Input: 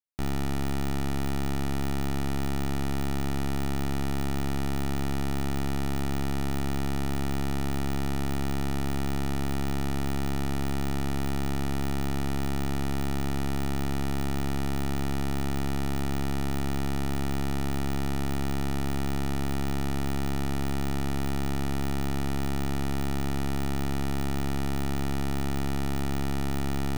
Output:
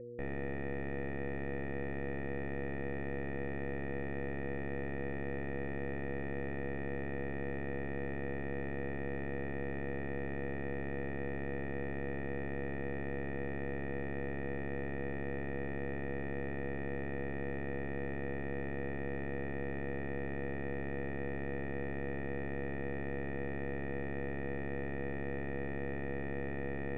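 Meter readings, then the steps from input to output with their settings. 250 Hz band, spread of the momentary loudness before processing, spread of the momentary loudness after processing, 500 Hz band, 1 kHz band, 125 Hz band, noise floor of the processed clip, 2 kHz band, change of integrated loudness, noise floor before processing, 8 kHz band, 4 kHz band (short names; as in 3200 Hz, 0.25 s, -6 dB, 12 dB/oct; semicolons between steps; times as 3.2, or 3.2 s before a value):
-10.0 dB, 0 LU, 0 LU, -1.5 dB, -11.5 dB, -12.0 dB, -38 dBFS, -2.0 dB, -9.0 dB, -26 dBFS, under -40 dB, -24.0 dB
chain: buzz 120 Hz, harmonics 4, -41 dBFS -3 dB/oct; vocal tract filter e; gain +7.5 dB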